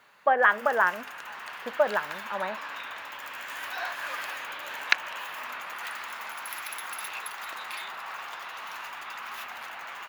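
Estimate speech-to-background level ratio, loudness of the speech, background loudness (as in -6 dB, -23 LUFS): 9.5 dB, -26.0 LUFS, -35.5 LUFS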